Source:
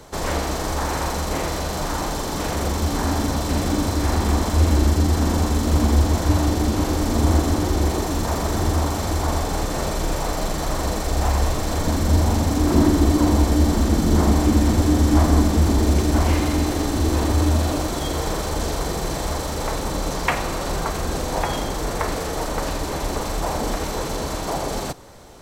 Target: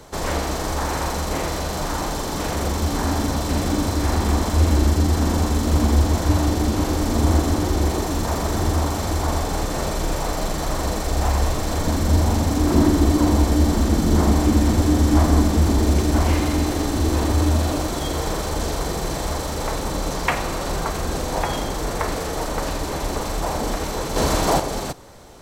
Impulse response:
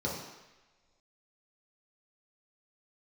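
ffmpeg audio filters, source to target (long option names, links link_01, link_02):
-filter_complex "[0:a]asettb=1/sr,asplit=3[link_01][link_02][link_03];[link_01]atrim=end=24.164[link_04];[link_02]atrim=start=24.16:end=24.6,asetpts=PTS-STARTPTS,afade=type=in:duration=0.004:curve=qsin,afade=type=out:start_time=0.436:duration=0.004:curve=qsin,acontrast=90[link_05];[link_03]atrim=start=24.596[link_06];[link_04][link_05]acrossfade=duration=0.004:curve1=hsin:curve2=qsin[link_07];[link_07][link_06]acrossfade=duration=0.004:curve1=qsin:curve2=hsin"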